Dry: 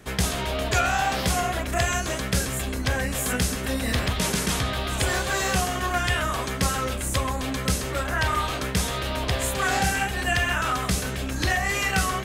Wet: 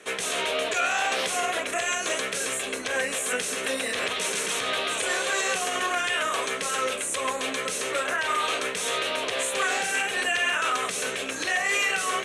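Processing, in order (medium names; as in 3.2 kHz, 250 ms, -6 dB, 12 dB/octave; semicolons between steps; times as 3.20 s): treble shelf 4.4 kHz +8 dB; peak limiter -16.5 dBFS, peak gain reduction 10 dB; cabinet simulation 440–9200 Hz, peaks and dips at 460 Hz +7 dB, 840 Hz -5 dB, 2.5 kHz +4 dB, 4.9 kHz -10 dB, 7.2 kHz -4 dB; trim +2 dB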